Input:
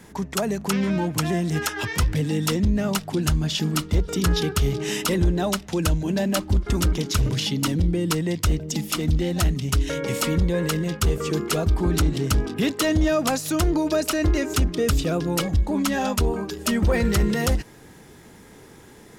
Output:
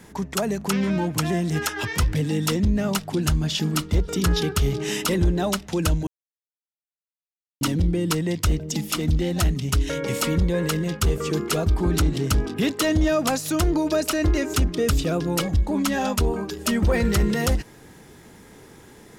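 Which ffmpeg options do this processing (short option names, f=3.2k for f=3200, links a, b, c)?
-filter_complex "[0:a]asplit=3[a][b][c];[a]atrim=end=6.07,asetpts=PTS-STARTPTS,afade=t=out:st=6.066:d=0.004:c=hsin[d];[b]atrim=start=6.07:end=7.61,asetpts=PTS-STARTPTS,volume=0[e];[c]atrim=start=7.61,asetpts=PTS-STARTPTS,afade=t=in:d=0.004:c=hsin[f];[d][e][f]concat=n=3:v=0:a=1"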